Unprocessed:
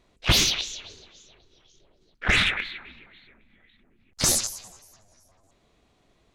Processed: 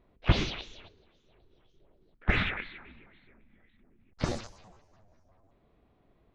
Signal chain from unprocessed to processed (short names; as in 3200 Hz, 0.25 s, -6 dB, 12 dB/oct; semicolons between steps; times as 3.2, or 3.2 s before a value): 0.88–2.28 compressor 3:1, threshold -55 dBFS, peak gain reduction 20.5 dB; tape spacing loss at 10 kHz 40 dB